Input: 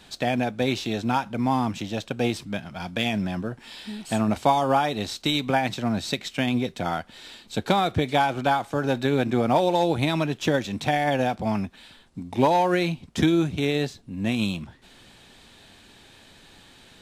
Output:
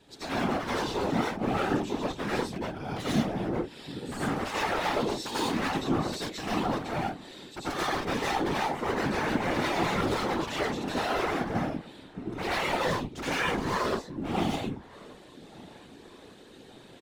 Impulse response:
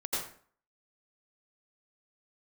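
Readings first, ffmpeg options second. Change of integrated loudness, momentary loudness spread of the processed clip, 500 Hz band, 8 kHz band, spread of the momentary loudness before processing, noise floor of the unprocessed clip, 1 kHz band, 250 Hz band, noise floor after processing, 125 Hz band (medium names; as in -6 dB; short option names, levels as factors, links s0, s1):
-5.0 dB, 13 LU, -5.5 dB, -1.5 dB, 11 LU, -52 dBFS, -5.5 dB, -5.5 dB, -51 dBFS, -7.0 dB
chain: -filter_complex "[0:a]equalizer=f=330:t=o:w=1.4:g=11.5,aeval=exprs='0.112*(abs(mod(val(0)/0.112+3,4)-2)-1)':c=same,asplit=2[s0][s1];[s1]adelay=1180,lowpass=f=2200:p=1,volume=0.0891,asplit=2[s2][s3];[s3]adelay=1180,lowpass=f=2200:p=1,volume=0.51,asplit=2[s4][s5];[s5]adelay=1180,lowpass=f=2200:p=1,volume=0.51,asplit=2[s6][s7];[s7]adelay=1180,lowpass=f=2200:p=1,volume=0.51[s8];[s0][s2][s4][s6][s8]amix=inputs=5:normalize=0[s9];[1:a]atrim=start_sample=2205,atrim=end_sample=6615[s10];[s9][s10]afir=irnorm=-1:irlink=0,afftfilt=real='hypot(re,im)*cos(2*PI*random(0))':imag='hypot(re,im)*sin(2*PI*random(1))':win_size=512:overlap=0.75,volume=0.668"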